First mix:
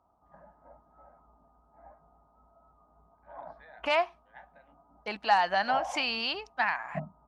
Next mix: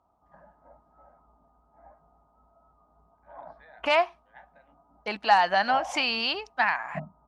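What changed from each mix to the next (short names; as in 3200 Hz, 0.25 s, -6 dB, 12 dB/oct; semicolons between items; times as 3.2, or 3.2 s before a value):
second voice +4.0 dB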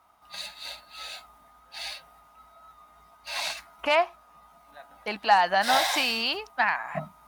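first voice: entry -2.60 s; background: remove Gaussian blur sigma 10 samples; master: remove LPF 7100 Hz 12 dB/oct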